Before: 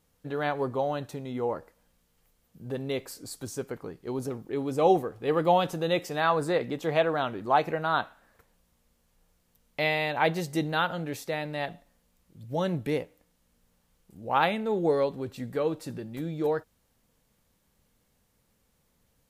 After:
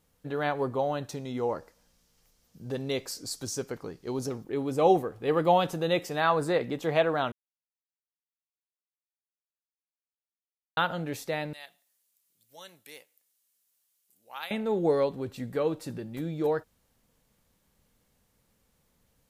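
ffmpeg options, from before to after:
-filter_complex "[0:a]asettb=1/sr,asplit=3[s0][s1][s2];[s0]atrim=end=1.094[s3];[s1]atrim=start=1.09:end=4.44,asetpts=PTS-STARTPTS,afade=t=in:d=0.004:c=qsin,afade=t=out:st=3.346:d=0.004:c=qsin,equalizer=f=5500:t=o:w=0.91:g=9.5[s4];[s2]atrim=start=4.436[s5];[s3][s4]acrossfade=d=0.004:c1=hsin:c2=qsin[s6];[s6][s5]acrossfade=d=0.004:c1=qsin:c2=hsin,asettb=1/sr,asplit=3[s7][s8][s9];[s7]atrim=end=11.534[s10];[s8]atrim=start=11.53:end=14.51,asetpts=PTS-STARTPTS,afade=t=in:d=0.004:c=qsin,afade=t=out:st=2.976:d=0.004:c=qsin,aderivative[s11];[s9]atrim=start=14.506[s12];[s10][s11]acrossfade=d=0.004:c1=hsin:c2=qsin[s13];[s13][s12]acrossfade=d=0.004:c1=qsin:c2=hsin,asplit=3[s14][s15][s16];[s14]atrim=end=7.32,asetpts=PTS-STARTPTS,afade=t=out:st=7.316:d=0.004:c=hsin[s17];[s15]atrim=start=7.32:end=10.77,asetpts=PTS-STARTPTS,volume=0[s18];[s16]atrim=start=10.77,asetpts=PTS-STARTPTS,afade=t=in:d=0.004:c=hsin[s19];[s17][s18][s19]concat=n=3:v=0:a=1"

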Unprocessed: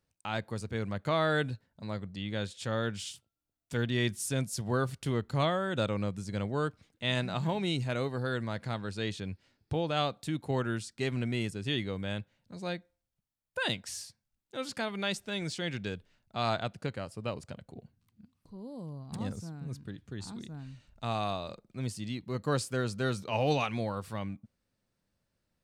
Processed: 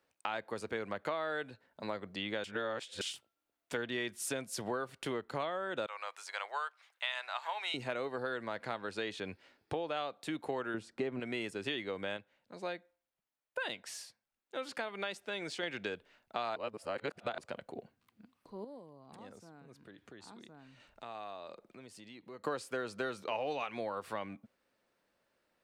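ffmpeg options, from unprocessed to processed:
-filter_complex "[0:a]asettb=1/sr,asplit=3[s0][s1][s2];[s0]atrim=end=5.864[s3];[s1]atrim=start=5.86:end=7.74,asetpts=PTS-STARTPTS,afade=t=in:d=0.004:c=qsin,afade=t=out:st=1.876:d=0.004:c=qsin,highpass=f=820:w=0.5412,highpass=f=820:w=1.3066[s4];[s2]atrim=start=7.736[s5];[s3][s4]acrossfade=d=0.004:c1=hsin:c2=qsin[s6];[s6][s5]acrossfade=d=0.004:c1=qsin:c2=hsin,asettb=1/sr,asplit=3[s7][s8][s9];[s7]atrim=end=10.744[s10];[s8]atrim=start=10.74:end=11.2,asetpts=PTS-STARTPTS,afade=t=in:d=0.004:c=qsin,afade=t=out:st=0.456:d=0.004:c=qsin,tiltshelf=f=1300:g=8[s11];[s9]atrim=start=11.196[s12];[s10][s11]acrossfade=d=0.004:c1=hsin:c2=qsin[s13];[s13][s12]acrossfade=d=0.004:c1=qsin:c2=hsin,asettb=1/sr,asplit=3[s14][s15][s16];[s14]atrim=end=18.644[s17];[s15]atrim=start=18.64:end=22.44,asetpts=PTS-STARTPTS,afade=t=in:d=0.004:c=qsin,afade=t=out:st=3.796:d=0.004:c=qsin,acompressor=threshold=0.00251:ratio=4:attack=3.2:release=140:knee=1:detection=peak[s18];[s16]atrim=start=22.436[s19];[s17][s18]acrossfade=d=0.004:c1=hsin:c2=qsin[s20];[s20][s19]acrossfade=d=0.004:c1=qsin:c2=hsin,asplit=7[s21][s22][s23][s24][s25][s26][s27];[s21]atrim=end=2.442[s28];[s22]atrim=start=2.438:end=3.012,asetpts=PTS-STARTPTS,areverse[s29];[s23]atrim=start=3.008:end=12.172[s30];[s24]atrim=start=12.168:end=15.632,asetpts=PTS-STARTPTS,volume=0.531[s31];[s25]atrim=start=15.628:end=16.562[s32];[s26]atrim=start=16.558:end=17.382,asetpts=PTS-STARTPTS,areverse[s33];[s27]atrim=start=17.378[s34];[s28][s29]acrossfade=d=0.004:c1=hsin:c2=hsin[s35];[s35][s30]acrossfade=d=0.004:c1=hsin:c2=hsin[s36];[s36][s31]acrossfade=d=0.004:c1=hsin:c2=hsin[s37];[s37][s32]acrossfade=d=0.004:c1=hsin:c2=hsin[s38];[s38][s33]acrossfade=d=0.004:c1=hsin:c2=hsin[s39];[s39][s34]acrossfade=d=0.004:c1=hsin:c2=hsin,acrossover=split=300 3200:gain=0.0891 1 0.251[s40][s41][s42];[s40][s41][s42]amix=inputs=3:normalize=0,acompressor=threshold=0.00708:ratio=6,highshelf=f=6600:g=4.5,volume=2.66"

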